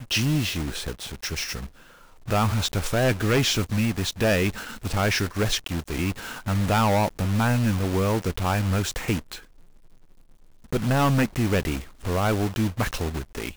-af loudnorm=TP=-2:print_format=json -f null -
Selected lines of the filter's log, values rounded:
"input_i" : "-24.9",
"input_tp" : "-14.3",
"input_lra" : "2.9",
"input_thresh" : "-35.4",